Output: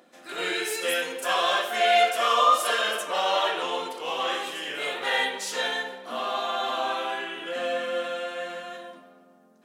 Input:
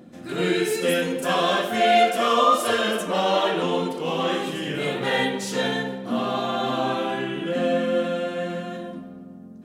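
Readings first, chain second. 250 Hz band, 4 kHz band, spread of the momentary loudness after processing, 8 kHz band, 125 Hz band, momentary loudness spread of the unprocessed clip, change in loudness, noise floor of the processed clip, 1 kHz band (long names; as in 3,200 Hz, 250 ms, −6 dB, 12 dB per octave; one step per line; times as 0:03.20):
−15.5 dB, 0.0 dB, 12 LU, 0.0 dB, below −20 dB, 11 LU, −2.5 dB, −56 dBFS, −1.5 dB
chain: high-pass filter 690 Hz 12 dB per octave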